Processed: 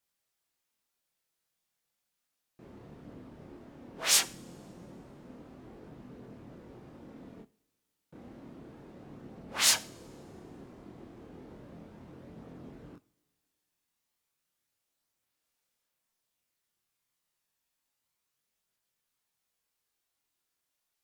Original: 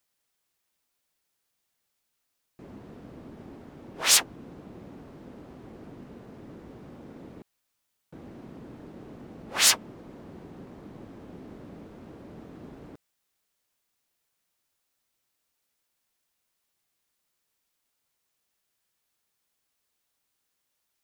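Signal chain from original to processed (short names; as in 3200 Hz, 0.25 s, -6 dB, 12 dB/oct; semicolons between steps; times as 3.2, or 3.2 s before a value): vibrato 10 Hz 6.1 cents; chorus voices 2, 0.16 Hz, delay 26 ms, depth 3.2 ms; two-slope reverb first 0.42 s, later 2.2 s, from -21 dB, DRR 14.5 dB; gain -1.5 dB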